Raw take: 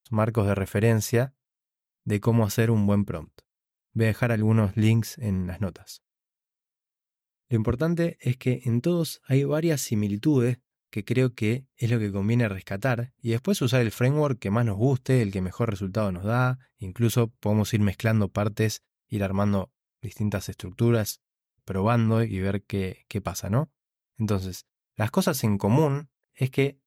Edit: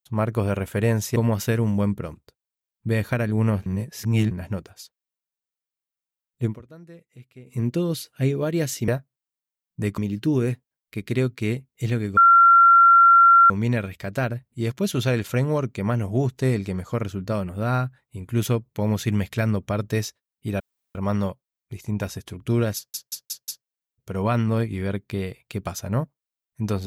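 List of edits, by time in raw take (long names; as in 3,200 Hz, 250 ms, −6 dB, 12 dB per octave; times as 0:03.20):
0:01.16–0:02.26: move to 0:09.98
0:04.76–0:05.41: reverse
0:07.55–0:08.69: duck −20.5 dB, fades 0.14 s
0:12.17: insert tone 1,370 Hz −9.5 dBFS 1.33 s
0:19.27: splice in room tone 0.35 s
0:21.08: stutter 0.18 s, 5 plays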